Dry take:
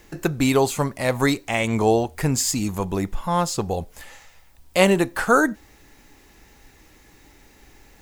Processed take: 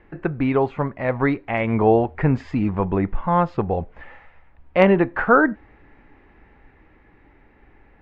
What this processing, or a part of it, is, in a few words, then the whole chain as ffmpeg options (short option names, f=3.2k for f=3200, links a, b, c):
action camera in a waterproof case: -af "lowpass=f=2.2k:w=0.5412,lowpass=f=2.2k:w=1.3066,dynaudnorm=f=350:g=11:m=15dB,volume=-1dB" -ar 48000 -c:a aac -b:a 128k